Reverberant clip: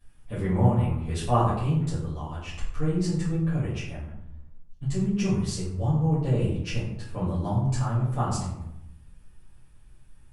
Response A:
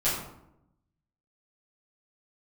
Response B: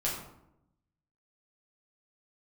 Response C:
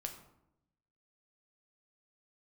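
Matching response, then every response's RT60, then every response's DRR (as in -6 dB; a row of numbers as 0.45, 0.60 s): A; 0.80, 0.80, 0.80 s; -12.5, -6.5, 3.5 dB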